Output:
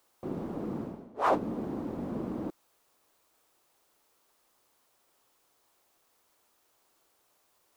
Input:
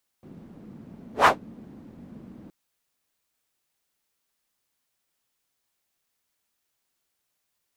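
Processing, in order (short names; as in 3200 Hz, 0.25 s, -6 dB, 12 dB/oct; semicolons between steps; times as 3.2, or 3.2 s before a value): band shelf 620 Hz +8.5 dB 2.4 oct; reverse; compressor 10:1, threshold -31 dBFS, peak gain reduction 25 dB; reverse; gain +6.5 dB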